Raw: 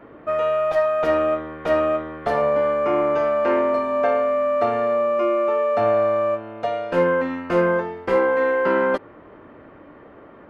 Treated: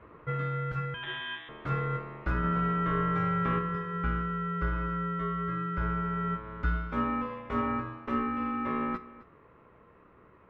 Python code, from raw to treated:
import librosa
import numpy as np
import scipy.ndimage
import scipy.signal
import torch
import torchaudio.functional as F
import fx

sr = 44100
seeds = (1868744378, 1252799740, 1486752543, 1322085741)

y = fx.freq_invert(x, sr, carrier_hz=3000, at=(0.94, 1.49))
y = y * np.sin(2.0 * np.pi * 760.0 * np.arange(len(y)) / sr)
y = fx.peak_eq(y, sr, hz=67.0, db=8.5, octaves=1.2)
y = fx.rider(y, sr, range_db=10, speed_s=0.5)
y = fx.high_shelf(y, sr, hz=2200.0, db=-9.5)
y = fx.comb_fb(y, sr, f0_hz=61.0, decay_s=0.28, harmonics='all', damping=0.0, mix_pct=50)
y = y + 10.0 ** (-18.5 / 20.0) * np.pad(y, (int(262 * sr / 1000.0), 0))[:len(y)]
y = fx.env_flatten(y, sr, amount_pct=50, at=(2.43, 3.58), fade=0.02)
y = F.gain(torch.from_numpy(y), -5.5).numpy()